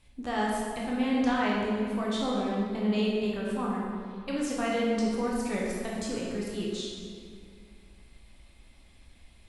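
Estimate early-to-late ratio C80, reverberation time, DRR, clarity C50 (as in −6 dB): 0.5 dB, 2.2 s, −5.0 dB, −1.5 dB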